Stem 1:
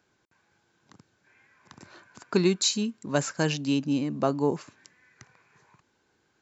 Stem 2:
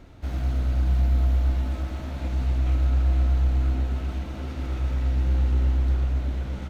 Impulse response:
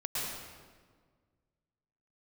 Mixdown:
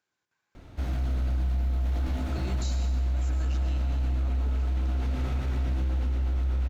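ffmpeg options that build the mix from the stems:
-filter_complex "[0:a]alimiter=limit=-15dB:level=0:latency=1,tiltshelf=frequency=650:gain=-5,volume=-18dB,asplit=2[link_01][link_02];[link_02]volume=-6dB[link_03];[1:a]adelay=550,volume=0dB,asplit=2[link_04][link_05];[link_05]volume=-3.5dB[link_06];[2:a]atrim=start_sample=2205[link_07];[link_03][link_07]afir=irnorm=-1:irlink=0[link_08];[link_06]aecho=0:1:1076:1[link_09];[link_01][link_04][link_08][link_09]amix=inputs=4:normalize=0,alimiter=limit=-22dB:level=0:latency=1:release=14"

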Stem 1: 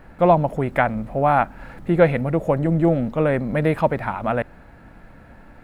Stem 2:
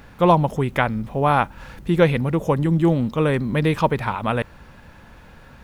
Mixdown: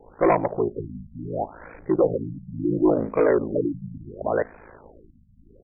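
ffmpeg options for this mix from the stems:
ffmpeg -i stem1.wav -i stem2.wav -filter_complex "[0:a]bandreject=frequency=77.79:width_type=h:width=4,bandreject=frequency=155.58:width_type=h:width=4,bandreject=frequency=233.37:width_type=h:width=4,bandreject=frequency=311.16:width_type=h:width=4,bandreject=frequency=388.95:width_type=h:width=4,bandreject=frequency=466.74:width_type=h:width=4,bandreject=frequency=544.53:width_type=h:width=4,bandreject=frequency=622.32:width_type=h:width=4,bandreject=frequency=700.11:width_type=h:width=4,bandreject=frequency=777.9:width_type=h:width=4,bandreject=frequency=855.69:width_type=h:width=4,bandreject=frequency=933.48:width_type=h:width=4,bandreject=frequency=1011.27:width_type=h:width=4,bandreject=frequency=1089.06:width_type=h:width=4,bandreject=frequency=1166.85:width_type=h:width=4,bandreject=frequency=1244.64:width_type=h:width=4,bandreject=frequency=1322.43:width_type=h:width=4,bandreject=frequency=1400.22:width_type=h:width=4,bandreject=frequency=1478.01:width_type=h:width=4,bandreject=frequency=1555.8:width_type=h:width=4,bandreject=frequency=1633.59:width_type=h:width=4,bandreject=frequency=1711.38:width_type=h:width=4,bandreject=frequency=1789.17:width_type=h:width=4,bandreject=frequency=1866.96:width_type=h:width=4,bandreject=frequency=1944.75:width_type=h:width=4,bandreject=frequency=2022.54:width_type=h:width=4,bandreject=frequency=2100.33:width_type=h:width=4,volume=-6dB[link_01];[1:a]lowshelf=frequency=260:width_type=q:width=3:gain=-13.5,dynaudnorm=framelen=320:gausssize=3:maxgain=3.5dB,volume=-1,adelay=2.3,volume=1.5dB[link_02];[link_01][link_02]amix=inputs=2:normalize=0,aeval=exprs='val(0)*sin(2*PI*27*n/s)':channel_layout=same,asoftclip=type=tanh:threshold=-12dB,afftfilt=real='re*lt(b*sr/1024,240*pow(2600/240,0.5+0.5*sin(2*PI*0.71*pts/sr)))':imag='im*lt(b*sr/1024,240*pow(2600/240,0.5+0.5*sin(2*PI*0.71*pts/sr)))':win_size=1024:overlap=0.75" out.wav

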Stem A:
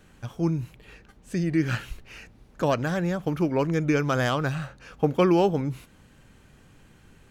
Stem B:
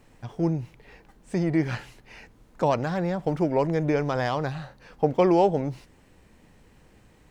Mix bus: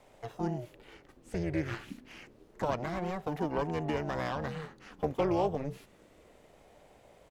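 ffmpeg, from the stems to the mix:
ffmpeg -i stem1.wav -i stem2.wav -filter_complex "[0:a]acrossover=split=850|3000[link_01][link_02][link_03];[link_01]acompressor=threshold=-32dB:ratio=4[link_04];[link_02]acompressor=threshold=-36dB:ratio=4[link_05];[link_03]acompressor=threshold=-52dB:ratio=4[link_06];[link_04][link_05][link_06]amix=inputs=3:normalize=0,asoftclip=type=hard:threshold=-24dB,aeval=exprs='val(0)*sin(2*PI*410*n/s+410*0.45/0.29*sin(2*PI*0.29*n/s))':channel_layout=same,volume=-3.5dB[link_07];[1:a]volume=-1,adelay=1.9,volume=-10dB[link_08];[link_07][link_08]amix=inputs=2:normalize=0" out.wav

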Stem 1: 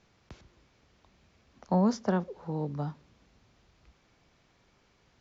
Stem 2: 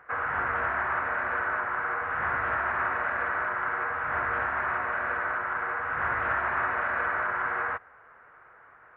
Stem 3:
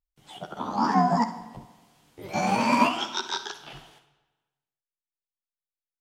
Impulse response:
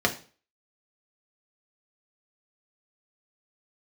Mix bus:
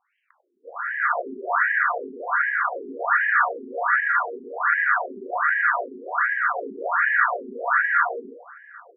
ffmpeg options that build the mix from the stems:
-filter_complex "[0:a]lowshelf=frequency=300:gain=-11,acompressor=threshold=-40dB:ratio=3,volume=2dB[link_01];[1:a]dynaudnorm=framelen=290:gausssize=3:maxgain=12.5dB,adelay=550,volume=-9dB,asplit=2[link_02][link_03];[link_03]volume=-5dB[link_04];[link_02]alimiter=level_in=0.5dB:limit=-24dB:level=0:latency=1,volume=-0.5dB,volume=0dB[link_05];[3:a]atrim=start_sample=2205[link_06];[link_04][link_06]afir=irnorm=-1:irlink=0[link_07];[link_01][link_05][link_07]amix=inputs=3:normalize=0,afftfilt=real='re*between(b*sr/1024,300*pow(2300/300,0.5+0.5*sin(2*PI*1.3*pts/sr))/1.41,300*pow(2300/300,0.5+0.5*sin(2*PI*1.3*pts/sr))*1.41)':imag='im*between(b*sr/1024,300*pow(2300/300,0.5+0.5*sin(2*PI*1.3*pts/sr))/1.41,300*pow(2300/300,0.5+0.5*sin(2*PI*1.3*pts/sr))*1.41)':win_size=1024:overlap=0.75"

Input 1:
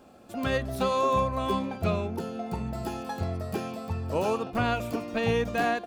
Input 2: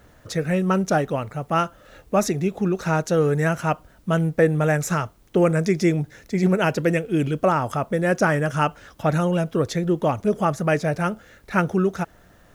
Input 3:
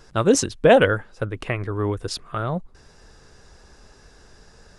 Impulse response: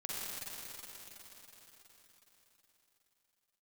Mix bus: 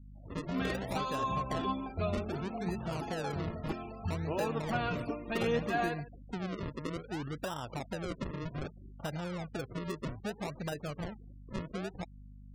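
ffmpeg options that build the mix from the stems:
-filter_complex "[0:a]bandreject=frequency=530:width=14,flanger=delay=1.3:depth=6:regen=32:speed=0.51:shape=triangular,adelay=150,volume=-3dB,asplit=2[link_01][link_02];[link_02]volume=-15.5dB[link_03];[1:a]aeval=exprs='val(0)+0.0126*(sin(2*PI*50*n/s)+sin(2*PI*2*50*n/s)/2+sin(2*PI*3*50*n/s)/3+sin(2*PI*4*50*n/s)/4+sin(2*PI*5*50*n/s)/5)':channel_layout=same,volume=-11.5dB,asplit=2[link_04][link_05];[2:a]highpass=320,volume=-17.5dB[link_06];[link_05]apad=whole_len=210983[link_07];[link_06][link_07]sidechaingate=range=-33dB:threshold=-41dB:ratio=16:detection=peak[link_08];[link_04][link_08]amix=inputs=2:normalize=0,acrusher=samples=39:mix=1:aa=0.000001:lfo=1:lforange=39:lforate=0.63,acompressor=threshold=-35dB:ratio=5,volume=0dB[link_09];[link_03]aecho=0:1:146:1[link_10];[link_01][link_09][link_10]amix=inputs=3:normalize=0,afftfilt=real='re*gte(hypot(re,im),0.00447)':imag='im*gte(hypot(re,im),0.00447)':win_size=1024:overlap=0.75"

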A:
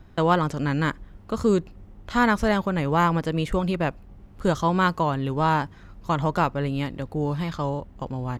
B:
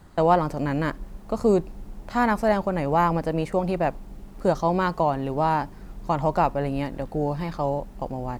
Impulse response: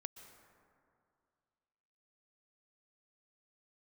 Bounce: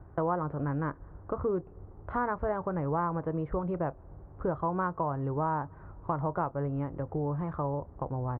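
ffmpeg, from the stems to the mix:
-filter_complex "[0:a]highpass=43,equalizer=frequency=220:width=3.8:gain=-14,volume=1dB,asplit=2[link_01][link_02];[link_02]volume=-22dB[link_03];[1:a]adelay=28,volume=-17.5dB[link_04];[2:a]atrim=start_sample=2205[link_05];[link_03][link_05]afir=irnorm=-1:irlink=0[link_06];[link_01][link_04][link_06]amix=inputs=3:normalize=0,lowpass=frequency=1300:width=0.5412,lowpass=frequency=1300:width=1.3066,acompressor=threshold=-31dB:ratio=2.5"

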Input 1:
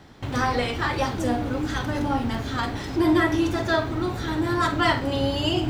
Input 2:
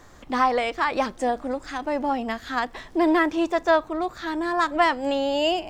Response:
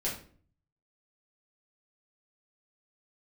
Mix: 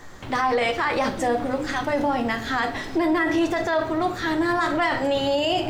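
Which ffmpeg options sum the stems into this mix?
-filter_complex "[0:a]highpass=frequency=200:poles=1,volume=-2.5dB[link_01];[1:a]equalizer=frequency=1900:width_type=o:width=0.21:gain=5.5,bandreject=frequency=49.84:width_type=h:width=4,bandreject=frequency=99.68:width_type=h:width=4,bandreject=frequency=149.52:width_type=h:width=4,bandreject=frequency=199.36:width_type=h:width=4,bandreject=frequency=249.2:width_type=h:width=4,bandreject=frequency=299.04:width_type=h:width=4,bandreject=frequency=348.88:width_type=h:width=4,bandreject=frequency=398.72:width_type=h:width=4,bandreject=frequency=448.56:width_type=h:width=4,bandreject=frequency=498.4:width_type=h:width=4,bandreject=frequency=548.24:width_type=h:width=4,bandreject=frequency=598.08:width_type=h:width=4,bandreject=frequency=647.92:width_type=h:width=4,bandreject=frequency=697.76:width_type=h:width=4,volume=-1,volume=2dB,asplit=2[link_02][link_03];[link_03]volume=-10dB[link_04];[2:a]atrim=start_sample=2205[link_05];[link_04][link_05]afir=irnorm=-1:irlink=0[link_06];[link_01][link_02][link_06]amix=inputs=3:normalize=0,alimiter=limit=-14dB:level=0:latency=1:release=31"

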